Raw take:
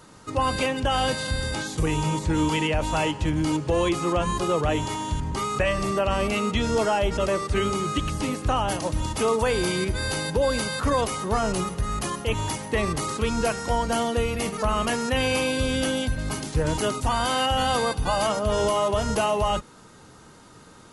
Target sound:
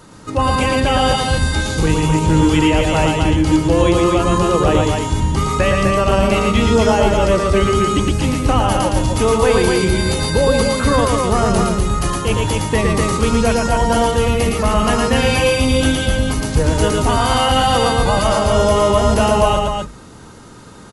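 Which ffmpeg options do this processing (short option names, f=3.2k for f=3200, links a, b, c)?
-af "lowshelf=f=350:g=5,bandreject=f=50:t=h:w=6,bandreject=f=100:t=h:w=6,bandreject=f=150:t=h:w=6,aecho=1:1:113.7|253.6:0.708|0.631,volume=5dB"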